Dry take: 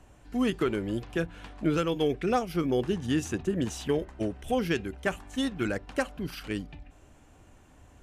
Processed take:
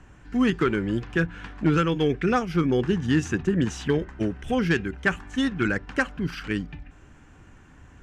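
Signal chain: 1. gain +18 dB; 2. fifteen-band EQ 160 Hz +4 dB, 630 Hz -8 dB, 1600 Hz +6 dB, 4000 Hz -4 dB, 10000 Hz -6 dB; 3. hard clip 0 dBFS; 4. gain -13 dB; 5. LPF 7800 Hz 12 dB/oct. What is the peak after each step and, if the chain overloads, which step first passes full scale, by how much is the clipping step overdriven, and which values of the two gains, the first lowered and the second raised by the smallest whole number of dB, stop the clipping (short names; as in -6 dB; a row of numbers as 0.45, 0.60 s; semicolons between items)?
+4.0, +5.0, 0.0, -13.0, -12.5 dBFS; step 1, 5.0 dB; step 1 +13 dB, step 4 -8 dB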